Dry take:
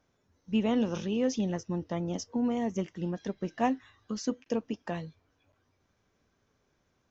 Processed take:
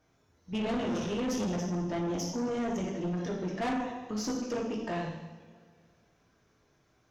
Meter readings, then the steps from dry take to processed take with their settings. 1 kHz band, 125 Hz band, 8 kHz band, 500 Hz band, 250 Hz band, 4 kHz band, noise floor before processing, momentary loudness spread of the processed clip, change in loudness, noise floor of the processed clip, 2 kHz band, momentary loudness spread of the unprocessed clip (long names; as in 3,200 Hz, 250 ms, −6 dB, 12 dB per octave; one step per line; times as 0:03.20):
0.0 dB, +0.5 dB, can't be measured, −0.5 dB, −2.0 dB, +1.5 dB, −75 dBFS, 5 LU, −1.0 dB, −69 dBFS, +2.5 dB, 8 LU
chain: coupled-rooms reverb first 0.91 s, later 2.5 s, DRR −3 dB
tube saturation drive 29 dB, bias 0.3
level +1 dB